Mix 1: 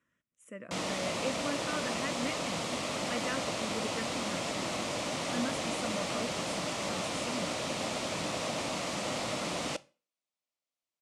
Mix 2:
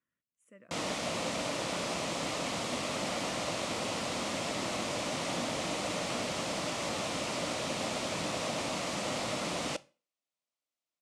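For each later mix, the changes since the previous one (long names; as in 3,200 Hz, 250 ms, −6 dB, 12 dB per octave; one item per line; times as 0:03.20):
speech −11.5 dB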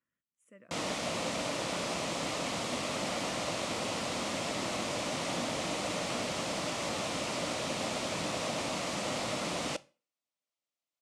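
nothing changed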